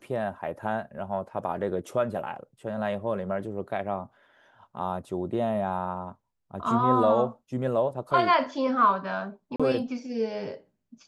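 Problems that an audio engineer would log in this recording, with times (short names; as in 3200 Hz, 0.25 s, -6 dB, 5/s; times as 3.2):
9.56–9.6 gap 36 ms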